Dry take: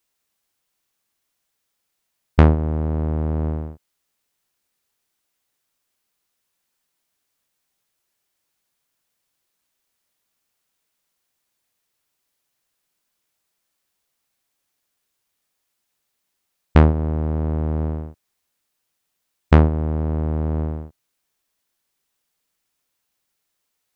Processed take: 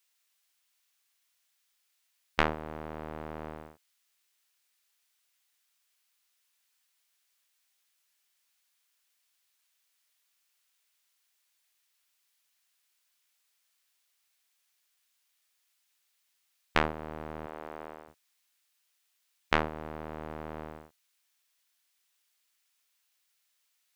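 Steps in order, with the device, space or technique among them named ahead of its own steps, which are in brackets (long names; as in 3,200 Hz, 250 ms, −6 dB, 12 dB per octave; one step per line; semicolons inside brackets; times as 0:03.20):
0:17.46–0:18.08: bass and treble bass −13 dB, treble −3 dB
filter by subtraction (in parallel: low-pass filter 2,500 Hz 12 dB per octave + polarity inversion)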